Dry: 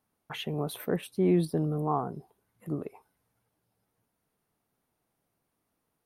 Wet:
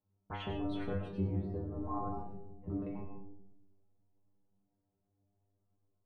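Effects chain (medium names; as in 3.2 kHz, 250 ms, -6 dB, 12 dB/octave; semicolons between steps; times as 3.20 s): octave divider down 1 oct, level +2 dB; level-controlled noise filter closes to 590 Hz, open at -24 dBFS; gate -57 dBFS, range -7 dB; low-pass that closes with the level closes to 1.5 kHz, closed at -23.5 dBFS; compression 6:1, threshold -38 dBFS, peak gain reduction 19 dB; inharmonic resonator 97 Hz, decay 0.56 s, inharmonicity 0.002; reverberation RT60 0.80 s, pre-delay 65 ms, DRR 4.5 dB; trim +15.5 dB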